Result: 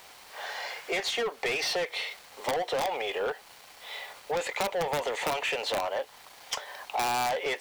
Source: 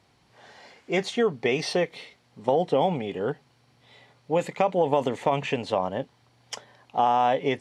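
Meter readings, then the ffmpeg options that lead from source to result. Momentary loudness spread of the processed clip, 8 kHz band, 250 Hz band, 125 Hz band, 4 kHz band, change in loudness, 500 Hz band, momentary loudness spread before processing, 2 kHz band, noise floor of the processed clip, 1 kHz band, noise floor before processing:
12 LU, +5.0 dB, −13.5 dB, −14.5 dB, +3.5 dB, −5.0 dB, −6.5 dB, 17 LU, +2.5 dB, −52 dBFS, −5.5 dB, −63 dBFS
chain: -filter_complex "[0:a]highpass=frequency=460:width=0.5412,highpass=frequency=460:width=1.3066,asplit=2[link_01][link_02];[link_02]highpass=frequency=720:poles=1,volume=24dB,asoftclip=type=tanh:threshold=-11dB[link_03];[link_01][link_03]amix=inputs=2:normalize=0,lowpass=frequency=6000:poles=1,volume=-6dB,aeval=exprs='(mod(4.22*val(0)+1,2)-1)/4.22':channel_layout=same,acrusher=bits=7:mix=0:aa=0.000001,acompressor=threshold=-29dB:ratio=2.5,volume=-2.5dB"

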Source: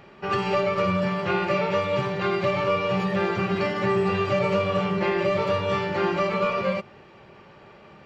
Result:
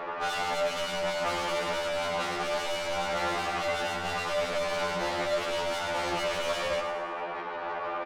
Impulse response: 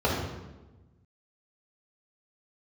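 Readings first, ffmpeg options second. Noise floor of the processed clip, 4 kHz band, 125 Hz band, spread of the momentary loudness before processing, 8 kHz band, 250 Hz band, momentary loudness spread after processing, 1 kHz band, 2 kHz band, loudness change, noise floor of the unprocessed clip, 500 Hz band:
−36 dBFS, +2.0 dB, −16.0 dB, 2 LU, can't be measured, −13.5 dB, 4 LU, −3.5 dB, −2.5 dB, −6.0 dB, −50 dBFS, −6.5 dB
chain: -filter_complex "[0:a]asplit=2[link_01][link_02];[link_02]acompressor=threshold=-32dB:ratio=6,volume=0dB[link_03];[link_01][link_03]amix=inputs=2:normalize=0,asplit=2[link_04][link_05];[link_05]highpass=frequency=720:poles=1,volume=22dB,asoftclip=type=tanh:threshold=-9.5dB[link_06];[link_04][link_06]amix=inputs=2:normalize=0,lowpass=frequency=1200:poles=1,volume=-6dB,bandpass=frequency=1000:width_type=q:width=0.91:csg=0,asoftclip=type=tanh:threshold=-30dB,asplit=2[link_07][link_08];[link_08]aecho=0:1:107|214|321|428|535|642:0.398|0.207|0.108|0.056|0.0291|0.0151[link_09];[link_07][link_09]amix=inputs=2:normalize=0,afftfilt=real='re*2*eq(mod(b,4),0)':imag='im*2*eq(mod(b,4),0)':win_size=2048:overlap=0.75,volume=4.5dB"

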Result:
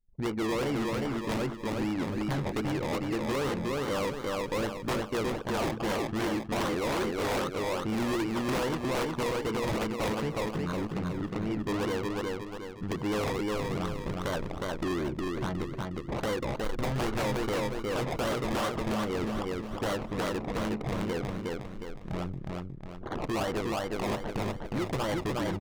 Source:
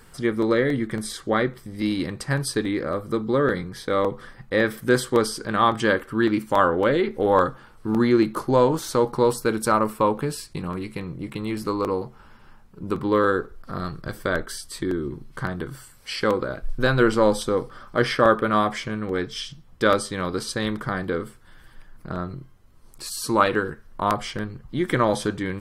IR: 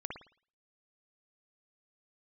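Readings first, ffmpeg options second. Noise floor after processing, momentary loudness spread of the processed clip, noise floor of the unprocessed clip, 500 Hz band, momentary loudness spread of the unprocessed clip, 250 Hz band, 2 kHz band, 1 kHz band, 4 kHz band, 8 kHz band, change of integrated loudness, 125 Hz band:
−41 dBFS, 5 LU, −50 dBFS, −9.0 dB, 13 LU, −6.5 dB, −9.0 dB, −9.5 dB, −5.5 dB, −8.0 dB, −8.0 dB, −4.5 dB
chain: -filter_complex "[0:a]acrusher=samples=24:mix=1:aa=0.000001:lfo=1:lforange=14.4:lforate=2.5,anlmdn=25.1,agate=range=-19dB:threshold=-50dB:ratio=16:detection=peak,acompressor=threshold=-28dB:ratio=2,asplit=2[link_01][link_02];[link_02]aecho=0:1:362|724|1086|1448|1810:0.631|0.259|0.106|0.0435|0.0178[link_03];[link_01][link_03]amix=inputs=2:normalize=0,aeval=exprs='(mod(6.68*val(0)+1,2)-1)/6.68':channel_layout=same,highshelf=frequency=7100:gain=-11.5,asoftclip=type=hard:threshold=-27dB"

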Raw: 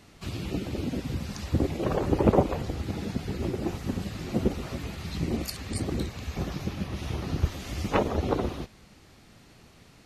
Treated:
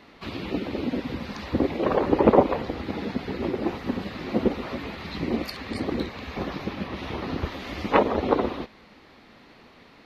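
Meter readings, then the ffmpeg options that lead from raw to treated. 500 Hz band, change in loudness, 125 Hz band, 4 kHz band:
+5.5 dB, +3.5 dB, −4.5 dB, +2.5 dB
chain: -af "equalizer=frequency=125:width_type=o:width=1:gain=-3,equalizer=frequency=250:width_type=o:width=1:gain=9,equalizer=frequency=500:width_type=o:width=1:gain=8,equalizer=frequency=1000:width_type=o:width=1:gain=10,equalizer=frequency=2000:width_type=o:width=1:gain=9,equalizer=frequency=4000:width_type=o:width=1:gain=9,equalizer=frequency=8000:width_type=o:width=1:gain=-11,volume=-5.5dB"

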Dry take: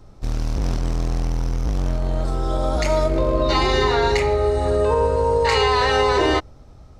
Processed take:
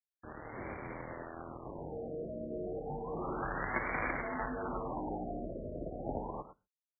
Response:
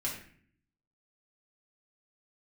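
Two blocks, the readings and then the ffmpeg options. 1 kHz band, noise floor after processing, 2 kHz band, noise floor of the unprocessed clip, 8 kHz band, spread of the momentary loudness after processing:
−18.0 dB, below −85 dBFS, −14.5 dB, −44 dBFS, below −40 dB, 11 LU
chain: -filter_complex "[0:a]highpass=430,aemphasis=mode=production:type=75kf,acontrast=68,aresample=11025,asoftclip=type=hard:threshold=-16.5dB,aresample=44100,flanger=delay=4.2:depth=7.7:regen=-42:speed=0.38:shape=sinusoidal,afreqshift=-200,aeval=exprs='0.299*(cos(1*acos(clip(val(0)/0.299,-1,1)))-cos(1*PI/2))+0.0168*(cos(2*acos(clip(val(0)/0.299,-1,1)))-cos(2*PI/2))+0.133*(cos(3*acos(clip(val(0)/0.299,-1,1)))-cos(3*PI/2))':channel_layout=same,afreqshift=38,acrusher=bits=6:mix=0:aa=0.000001,aecho=1:1:108:0.224,asplit=2[link_01][link_02];[1:a]atrim=start_sample=2205,atrim=end_sample=6615[link_03];[link_02][link_03]afir=irnorm=-1:irlink=0,volume=-21.5dB[link_04];[link_01][link_04]amix=inputs=2:normalize=0,afftfilt=real='re*lt(b*sr/1024,680*pow(2400/680,0.5+0.5*sin(2*PI*0.31*pts/sr)))':imag='im*lt(b*sr/1024,680*pow(2400/680,0.5+0.5*sin(2*PI*0.31*pts/sr)))':win_size=1024:overlap=0.75"

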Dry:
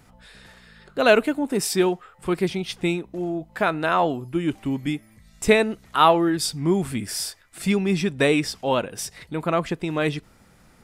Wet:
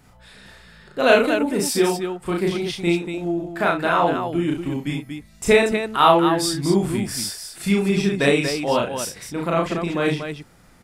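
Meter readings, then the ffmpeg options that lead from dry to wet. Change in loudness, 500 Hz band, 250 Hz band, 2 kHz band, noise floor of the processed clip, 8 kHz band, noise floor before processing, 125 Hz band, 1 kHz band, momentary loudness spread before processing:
+2.5 dB, +2.5 dB, +2.0 dB, +2.5 dB, −51 dBFS, +2.5 dB, −55 dBFS, +2.5 dB, +2.5 dB, 11 LU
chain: -af "aecho=1:1:34.99|67.06|236.2:0.891|0.398|0.501,volume=-1dB"

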